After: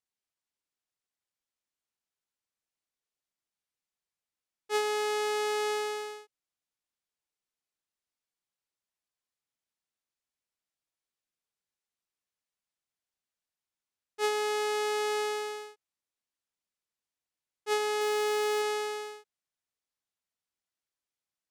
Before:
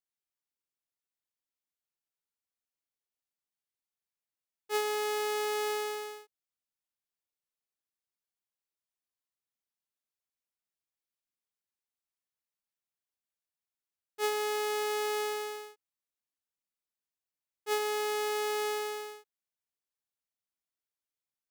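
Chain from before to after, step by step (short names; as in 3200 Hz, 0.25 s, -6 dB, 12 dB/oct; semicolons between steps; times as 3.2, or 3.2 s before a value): LPF 9500 Hz 12 dB/oct; 18.01–18.62 sample leveller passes 1; gain +2 dB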